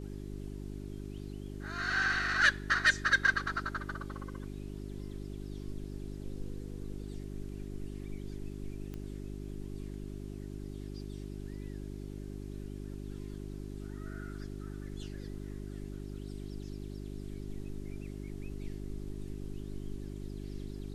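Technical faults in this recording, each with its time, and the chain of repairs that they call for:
hum 50 Hz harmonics 8 -42 dBFS
8.94 pop -29 dBFS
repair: de-click; de-hum 50 Hz, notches 8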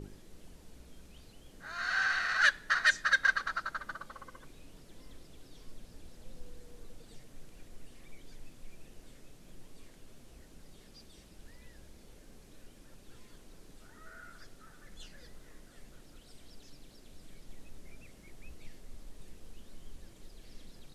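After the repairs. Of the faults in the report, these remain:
none

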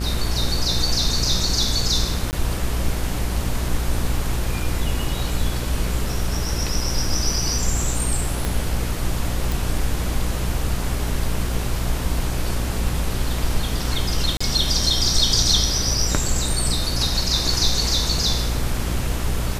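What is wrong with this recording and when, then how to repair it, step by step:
buzz 60 Hz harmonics 32 -26 dBFS
2.31–2.33 gap 19 ms
8.45 pop -9 dBFS
9.52 pop
14.37–14.4 gap 35 ms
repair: de-click; de-hum 60 Hz, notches 32; interpolate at 2.31, 19 ms; interpolate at 14.37, 35 ms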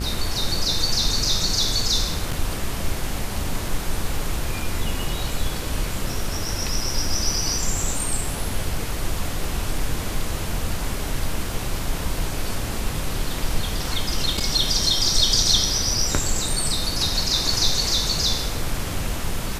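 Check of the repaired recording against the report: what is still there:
8.45 pop

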